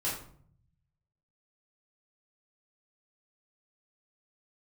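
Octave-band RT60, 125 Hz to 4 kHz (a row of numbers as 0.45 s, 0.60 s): 1.4 s, 0.90 s, 0.60 s, 0.55 s, 0.40 s, 0.35 s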